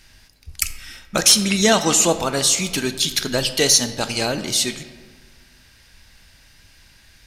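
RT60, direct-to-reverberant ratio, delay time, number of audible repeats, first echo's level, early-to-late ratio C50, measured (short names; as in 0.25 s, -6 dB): 1.6 s, 10.0 dB, none, none, none, 11.5 dB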